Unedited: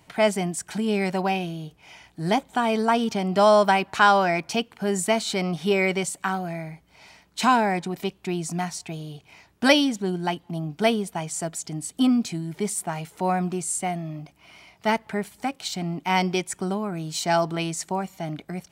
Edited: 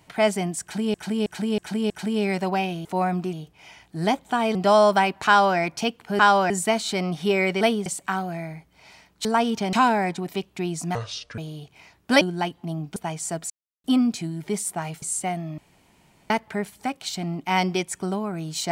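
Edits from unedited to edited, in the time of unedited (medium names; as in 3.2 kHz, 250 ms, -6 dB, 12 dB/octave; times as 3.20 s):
0.62–0.94 s: loop, 5 plays
2.79–3.27 s: move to 7.41 s
3.99–4.30 s: copy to 4.91 s
8.63–8.91 s: speed 65%
9.74–10.07 s: delete
10.82–11.07 s: move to 6.02 s
11.61–11.95 s: mute
13.13–13.61 s: move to 1.57 s
14.17–14.89 s: room tone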